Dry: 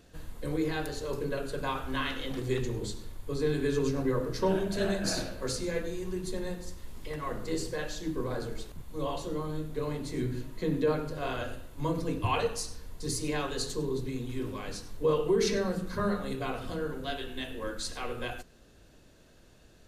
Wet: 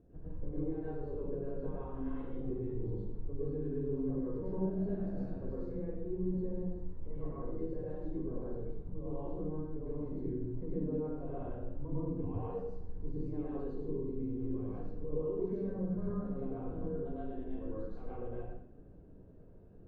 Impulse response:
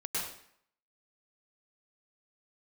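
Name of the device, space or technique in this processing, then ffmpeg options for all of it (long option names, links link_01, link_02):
television next door: -filter_complex "[0:a]acompressor=threshold=-39dB:ratio=3,lowpass=470[link_01];[1:a]atrim=start_sample=2205[link_02];[link_01][link_02]afir=irnorm=-1:irlink=0"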